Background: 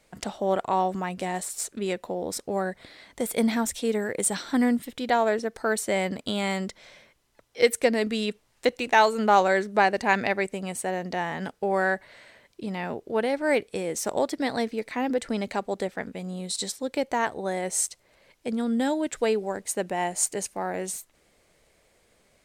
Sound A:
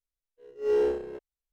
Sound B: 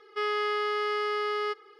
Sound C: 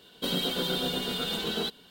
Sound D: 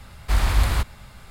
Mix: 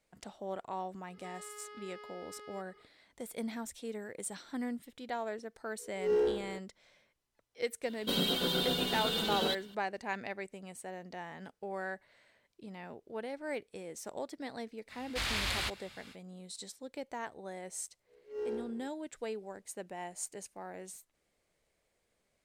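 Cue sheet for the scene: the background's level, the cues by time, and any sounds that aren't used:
background -15 dB
1.08 add B -9 dB + compressor 2.5:1, threshold -43 dBFS
5.4 add A -4.5 dB
7.85 add C -2 dB
14.87 add D -11.5 dB, fades 0.05 s + weighting filter D
17.69 add A -13.5 dB + HPF 54 Hz

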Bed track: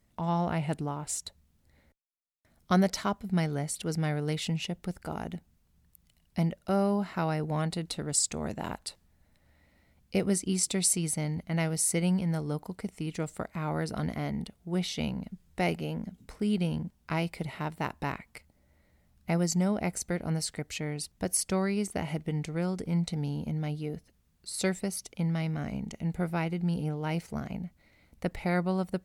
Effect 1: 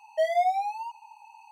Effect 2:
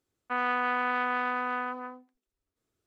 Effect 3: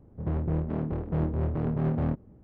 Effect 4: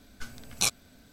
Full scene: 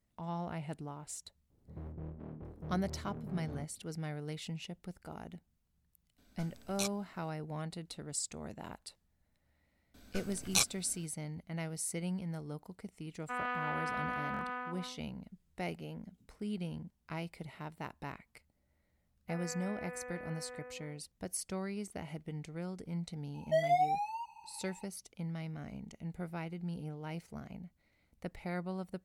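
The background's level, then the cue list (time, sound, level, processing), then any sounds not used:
bed track -10.5 dB
1.5 add 3 -16.5 dB
6.18 add 4 -11.5 dB
9.94 add 4 -3 dB
12.99 add 2 -8.5 dB + stuck buffer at 1.33, samples 1024, times 3
18.99 add 2 -2.5 dB + vocal tract filter e
23.34 add 1 -5 dB

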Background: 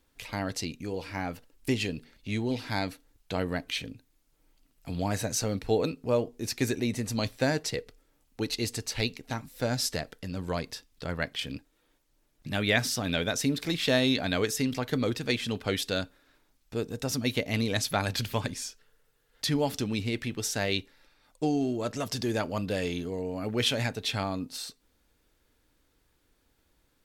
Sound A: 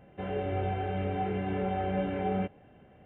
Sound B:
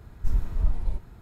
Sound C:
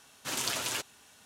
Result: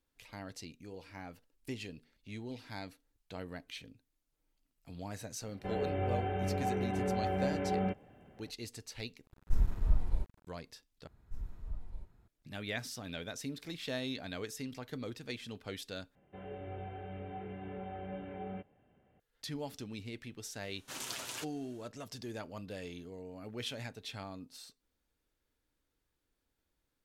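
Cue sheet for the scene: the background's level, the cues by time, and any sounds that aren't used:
background -13.5 dB
5.46 add A -2.5 dB
9.26 replace with B -4 dB + crossover distortion -42 dBFS
11.07 replace with B -17.5 dB
16.15 replace with A -12.5 dB
20.63 add C -9 dB

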